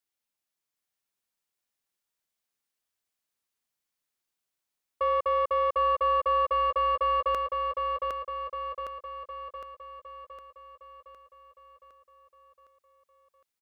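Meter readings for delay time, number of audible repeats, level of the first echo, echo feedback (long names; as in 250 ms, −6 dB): 760 ms, 7, −4.0 dB, 56%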